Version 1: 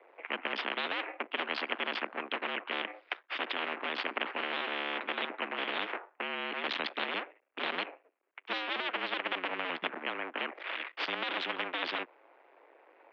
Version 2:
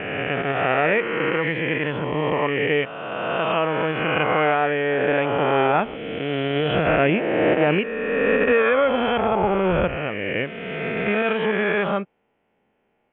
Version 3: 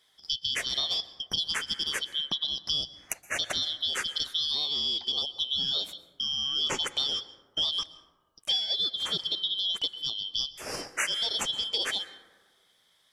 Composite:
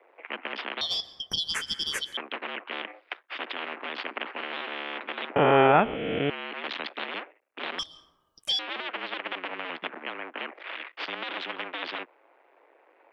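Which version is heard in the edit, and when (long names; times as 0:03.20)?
1
0:00.81–0:02.17: punch in from 3
0:05.36–0:06.30: punch in from 2
0:07.79–0:08.59: punch in from 3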